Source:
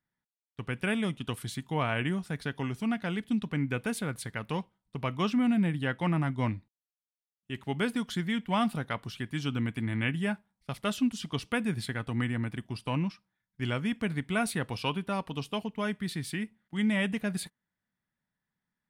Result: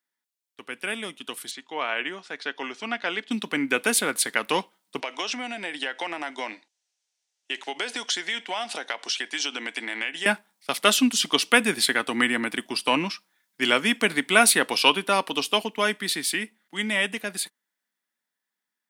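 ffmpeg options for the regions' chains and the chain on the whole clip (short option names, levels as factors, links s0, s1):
-filter_complex "[0:a]asettb=1/sr,asplit=3[s0][s1][s2];[s0]atrim=end=1.514[s3];[s1]atrim=start=1.51:end=3.31,asetpts=PTS-STARTPTS,afade=t=in:d=0.004:c=qsin,afade=t=out:st=1.796:d=0.004:c=qsin,lowpass=f=6800:w=0.5412,lowpass=f=6800:w=1.3066,bass=f=250:g=-11,treble=f=4000:g=-4[s4];[s2]atrim=start=3.306[s5];[s3][s4]acrossfade=d=0.004:c1=hsin:c2=qsin[s6];[s6][s5]acrossfade=d=0.004:c1=qsin:c2=hsin,asettb=1/sr,asplit=3[s7][s8][s9];[s7]atrim=end=5.004[s10];[s8]atrim=start=5:end=10.26,asetpts=PTS-STARTPTS,afade=t=in:d=0.004:c=qsin,afade=t=out:st=5.256:d=0.004:c=qsin,highpass=470,equalizer=f=740:t=q:w=4:g=3,equalizer=f=1200:t=q:w=4:g=-7,equalizer=f=5900:t=q:w=4:g=5,lowpass=f=8100:w=0.5412,lowpass=f=8100:w=1.3066,acompressor=threshold=0.0112:ratio=5:attack=3.2:release=140:knee=1:detection=peak[s11];[s9]atrim=start=10.256[s12];[s10][s11]acrossfade=d=0.004:c1=hsin:c2=qsin[s13];[s13][s12]acrossfade=d=0.004:c1=qsin:c2=hsin,dynaudnorm=f=360:g=17:m=4.47,highpass=f=270:w=0.5412,highpass=f=270:w=1.3066,highshelf=f=2000:g=9.5,volume=0.794"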